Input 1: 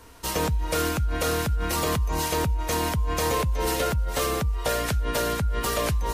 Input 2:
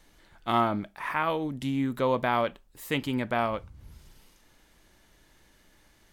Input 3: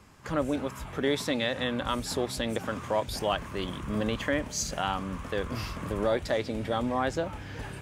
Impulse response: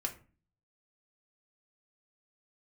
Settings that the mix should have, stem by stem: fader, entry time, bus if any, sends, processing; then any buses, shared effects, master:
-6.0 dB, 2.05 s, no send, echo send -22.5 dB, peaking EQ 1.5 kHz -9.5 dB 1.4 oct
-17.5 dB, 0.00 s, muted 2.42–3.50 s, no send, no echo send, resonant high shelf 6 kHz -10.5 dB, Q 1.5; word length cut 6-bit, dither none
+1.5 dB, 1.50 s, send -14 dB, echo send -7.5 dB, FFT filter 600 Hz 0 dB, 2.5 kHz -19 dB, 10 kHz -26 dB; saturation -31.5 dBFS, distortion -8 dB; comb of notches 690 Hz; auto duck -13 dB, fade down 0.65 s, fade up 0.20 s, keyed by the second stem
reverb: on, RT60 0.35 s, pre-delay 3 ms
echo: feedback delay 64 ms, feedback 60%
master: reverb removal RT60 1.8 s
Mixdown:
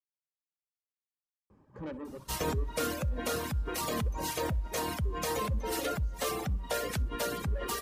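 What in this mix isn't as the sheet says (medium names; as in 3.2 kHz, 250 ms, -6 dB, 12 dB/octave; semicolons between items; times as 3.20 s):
stem 1: missing peaking EQ 1.5 kHz -9.5 dB 1.4 oct; stem 2: muted; stem 3 +1.5 dB -> -4.5 dB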